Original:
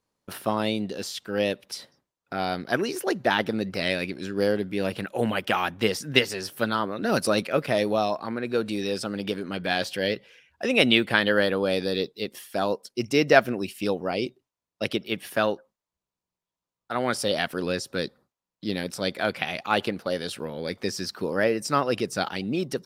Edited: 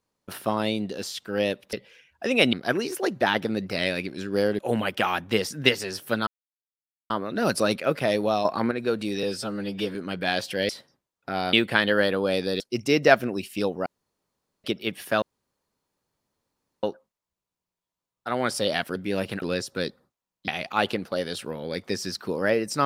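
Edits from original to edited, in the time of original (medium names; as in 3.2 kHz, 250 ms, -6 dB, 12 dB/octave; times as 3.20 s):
1.73–2.57 s: swap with 10.12–10.92 s
4.63–5.09 s: move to 17.60 s
6.77 s: insert silence 0.83 s
8.12–8.38 s: gain +6.5 dB
8.90–9.38 s: stretch 1.5×
11.99–12.85 s: delete
14.11–14.89 s: room tone
15.47 s: insert room tone 1.61 s
18.66–19.42 s: delete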